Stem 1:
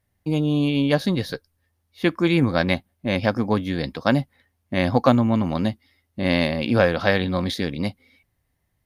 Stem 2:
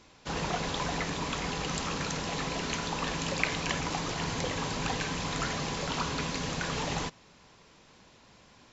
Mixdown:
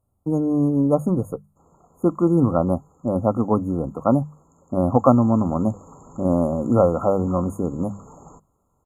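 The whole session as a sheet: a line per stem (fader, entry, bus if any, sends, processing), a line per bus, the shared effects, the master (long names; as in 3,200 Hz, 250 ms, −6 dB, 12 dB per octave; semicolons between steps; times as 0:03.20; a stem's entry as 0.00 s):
+2.0 dB, 0.00 s, no send, high-shelf EQ 7,800 Hz −7.5 dB
0:04.80 −23 dB → 0:05.34 −11 dB, 1.30 s, no send, no processing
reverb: not used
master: linear-phase brick-wall band-stop 1,400–6,500 Hz; mains-hum notches 50/100/150/200 Hz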